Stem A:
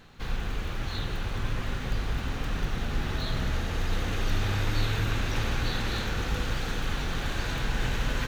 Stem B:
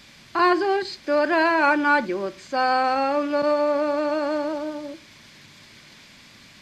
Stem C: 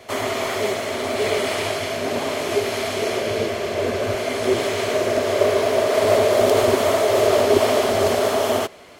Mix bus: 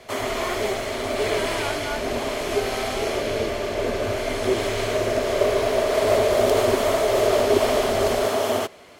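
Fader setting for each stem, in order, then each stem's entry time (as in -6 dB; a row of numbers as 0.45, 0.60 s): -10.0, -14.5, -2.5 dB; 0.00, 0.00, 0.00 s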